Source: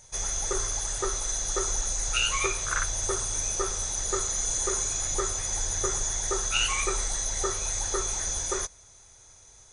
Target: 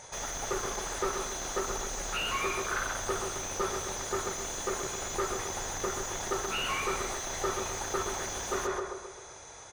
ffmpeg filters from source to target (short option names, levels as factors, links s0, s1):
-filter_complex "[0:a]asplit=2[s0][s1];[s1]adelay=132,lowpass=f=2000:p=1,volume=0.473,asplit=2[s2][s3];[s3]adelay=132,lowpass=f=2000:p=1,volume=0.5,asplit=2[s4][s5];[s5]adelay=132,lowpass=f=2000:p=1,volume=0.5,asplit=2[s6][s7];[s7]adelay=132,lowpass=f=2000:p=1,volume=0.5,asplit=2[s8][s9];[s9]adelay=132,lowpass=f=2000:p=1,volume=0.5,asplit=2[s10][s11];[s11]adelay=132,lowpass=f=2000:p=1,volume=0.5[s12];[s0][s2][s4][s6][s8][s10][s12]amix=inputs=7:normalize=0,asplit=2[s13][s14];[s14]highpass=f=720:p=1,volume=35.5,asoftclip=type=tanh:threshold=0.282[s15];[s13][s15]amix=inputs=2:normalize=0,lowpass=f=1000:p=1,volume=0.501,volume=0.473"